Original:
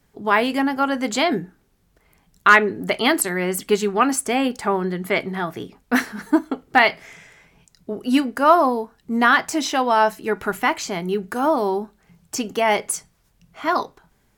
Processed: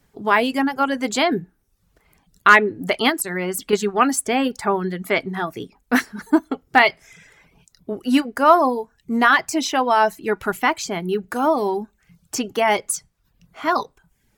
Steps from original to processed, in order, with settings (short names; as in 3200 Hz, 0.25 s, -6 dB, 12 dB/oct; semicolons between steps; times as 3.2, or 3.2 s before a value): reverb removal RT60 0.55 s; 3.09–3.73 compressor, threshold -21 dBFS, peak gain reduction 7 dB; gain +1 dB